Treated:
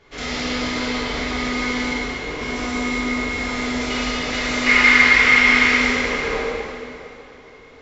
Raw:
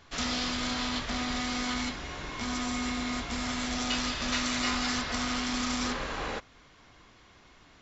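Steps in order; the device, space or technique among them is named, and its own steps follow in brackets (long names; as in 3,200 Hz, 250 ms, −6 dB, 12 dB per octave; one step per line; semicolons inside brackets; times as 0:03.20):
0:04.66–0:05.71: parametric band 2,100 Hz +14.5 dB 1.4 octaves
inside a helmet (high-shelf EQ 5,900 Hz −8 dB; hollow resonant body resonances 450/2,100 Hz, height 11 dB, ringing for 25 ms)
tape delay 332 ms, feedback 75%, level −18 dB, low-pass 1,900 Hz
dense smooth reverb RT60 2.4 s, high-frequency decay 1×, DRR −8 dB
level −1.5 dB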